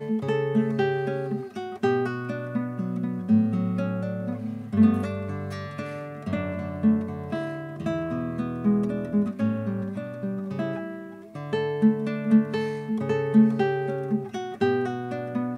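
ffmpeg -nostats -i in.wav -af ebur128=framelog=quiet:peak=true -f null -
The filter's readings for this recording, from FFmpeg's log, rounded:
Integrated loudness:
  I:         -26.4 LUFS
  Threshold: -36.5 LUFS
Loudness range:
  LRA:         4.1 LU
  Threshold: -46.6 LUFS
  LRA low:   -28.4 LUFS
  LRA high:  -24.2 LUFS
True peak:
  Peak:       -9.1 dBFS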